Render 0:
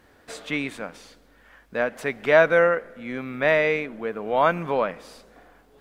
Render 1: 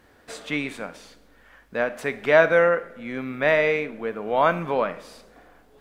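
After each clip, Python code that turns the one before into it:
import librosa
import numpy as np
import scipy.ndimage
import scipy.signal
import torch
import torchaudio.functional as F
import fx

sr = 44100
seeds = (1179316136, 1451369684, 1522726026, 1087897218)

y = fx.rev_schroeder(x, sr, rt60_s=0.47, comb_ms=27, drr_db=13.5)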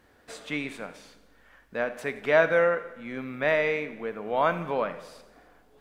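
y = fx.echo_feedback(x, sr, ms=86, feedback_pct=59, wet_db=-17.0)
y = y * 10.0 ** (-4.5 / 20.0)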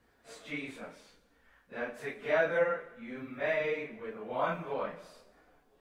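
y = fx.phase_scramble(x, sr, seeds[0], window_ms=100)
y = y * 10.0 ** (-7.5 / 20.0)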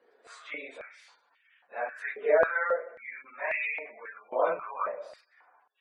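y = fx.spec_gate(x, sr, threshold_db=-25, keep='strong')
y = fx.filter_held_highpass(y, sr, hz=3.7, low_hz=450.0, high_hz=2500.0)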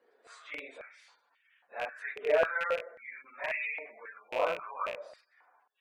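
y = fx.rattle_buzz(x, sr, strikes_db=-51.0, level_db=-23.0)
y = y * 10.0 ** (-3.5 / 20.0)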